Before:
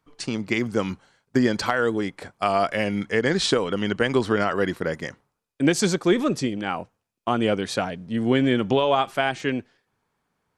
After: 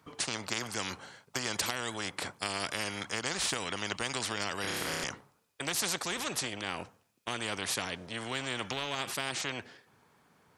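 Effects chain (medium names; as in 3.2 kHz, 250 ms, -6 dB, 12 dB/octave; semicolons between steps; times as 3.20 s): high-pass 85 Hz; 4.61–5.04 s: flutter echo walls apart 5.2 m, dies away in 1 s; spectrum-flattening compressor 4:1; trim -8 dB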